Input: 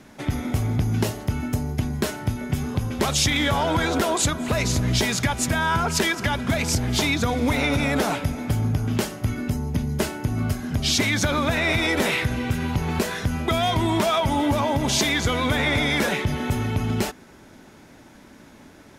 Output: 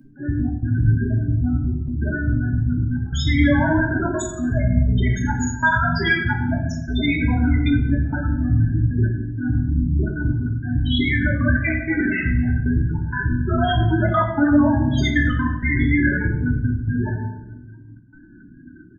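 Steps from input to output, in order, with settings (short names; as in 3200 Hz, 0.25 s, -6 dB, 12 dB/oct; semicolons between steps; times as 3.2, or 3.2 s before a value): half-waves squared off; thirty-one-band EQ 500 Hz -8 dB, 1600 Hz +10 dB, 3150 Hz +5 dB; early reflections 28 ms -10 dB, 44 ms -10 dB, 69 ms -9 dB; loudest bins only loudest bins 8; high shelf 5000 Hz +8.5 dB; step gate "x.xx.x..xxxxxxxx" 192 bpm -24 dB; doubler 17 ms -8 dB; reverb RT60 0.90 s, pre-delay 3 ms, DRR 0 dB; gain -3.5 dB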